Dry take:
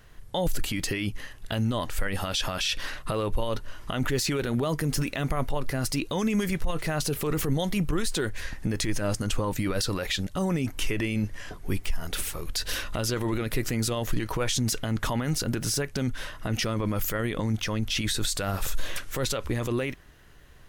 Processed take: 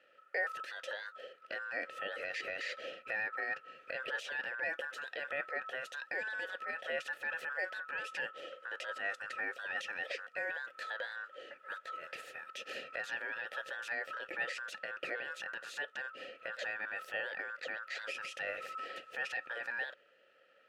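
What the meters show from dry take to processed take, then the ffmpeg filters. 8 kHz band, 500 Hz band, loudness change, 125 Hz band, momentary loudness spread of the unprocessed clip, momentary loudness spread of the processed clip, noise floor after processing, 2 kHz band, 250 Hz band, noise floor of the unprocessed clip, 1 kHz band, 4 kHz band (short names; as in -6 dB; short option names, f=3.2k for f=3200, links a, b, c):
-25.0 dB, -12.5 dB, -10.5 dB, under -40 dB, 6 LU, 7 LU, -66 dBFS, -0.5 dB, -31.5 dB, -48 dBFS, -8.5 dB, -15.5 dB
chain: -filter_complex "[0:a]aeval=exprs='val(0)*sin(2*PI*1300*n/s)':c=same,asplit=3[a][b][c];[a]bandpass=f=530:t=q:w=8,volume=0dB[d];[b]bandpass=f=1.84k:t=q:w=8,volume=-6dB[e];[c]bandpass=f=2.48k:t=q:w=8,volume=-9dB[f];[d][e][f]amix=inputs=3:normalize=0,volume=5.5dB"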